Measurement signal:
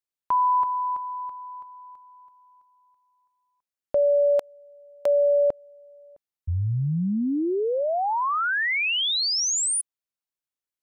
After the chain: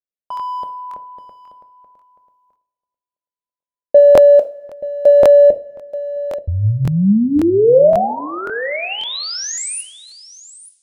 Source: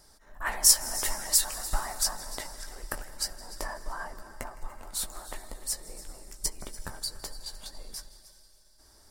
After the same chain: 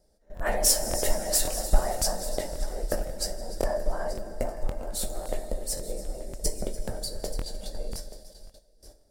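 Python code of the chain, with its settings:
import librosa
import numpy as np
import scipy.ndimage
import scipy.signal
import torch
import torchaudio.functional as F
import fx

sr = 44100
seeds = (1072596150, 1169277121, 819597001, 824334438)

p1 = 10.0 ** (-19.5 / 20.0) * (np.abs((x / 10.0 ** (-19.5 / 20.0) + 3.0) % 4.0 - 2.0) - 1.0)
p2 = x + (p1 * librosa.db_to_amplitude(-7.0))
p3 = fx.dynamic_eq(p2, sr, hz=1200.0, q=1.5, threshold_db=-37.0, ratio=4.0, max_db=3)
p4 = p3 + fx.echo_single(p3, sr, ms=881, db=-15.5, dry=0)
p5 = fx.gate_hold(p4, sr, open_db=-41.0, close_db=-48.0, hold_ms=17.0, range_db=-15, attack_ms=1.0, release_ms=20.0)
p6 = fx.low_shelf_res(p5, sr, hz=790.0, db=9.5, q=3.0)
p7 = fx.rev_double_slope(p6, sr, seeds[0], early_s=0.35, late_s=2.0, knee_db=-19, drr_db=7.0)
p8 = fx.buffer_crackle(p7, sr, first_s=0.35, period_s=0.54, block=1024, kind='repeat')
y = p8 * librosa.db_to_amplitude(-4.0)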